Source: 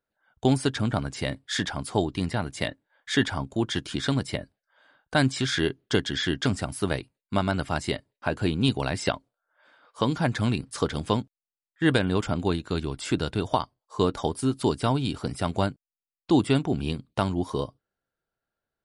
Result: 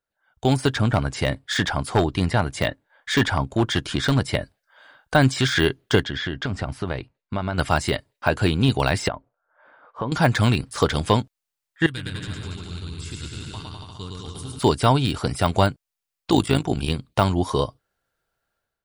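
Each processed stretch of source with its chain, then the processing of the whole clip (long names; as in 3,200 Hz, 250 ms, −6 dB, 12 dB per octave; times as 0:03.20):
0:00.73–0:04.35: high-shelf EQ 2,200 Hz −6 dB + gain into a clipping stage and back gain 18 dB
0:06.03–0:07.58: downward compressor 4 to 1, threshold −28 dBFS + head-to-tape spacing loss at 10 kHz 23 dB
0:09.08–0:10.12: low-pass filter 1,300 Hz + downward compressor 2.5 to 1, threshold −33 dBFS
0:11.86–0:14.59: guitar amp tone stack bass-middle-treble 6-0-2 + hard clipping −30.5 dBFS + bouncing-ball delay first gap 110 ms, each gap 0.85×, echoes 8, each echo −2 dB
0:16.31–0:16.90: amplitude modulation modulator 54 Hz, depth 55% + high-shelf EQ 5,200 Hz +8.5 dB
whole clip: de-essing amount 85%; parametric band 250 Hz −6.5 dB 1.8 octaves; automatic gain control gain up to 10.5 dB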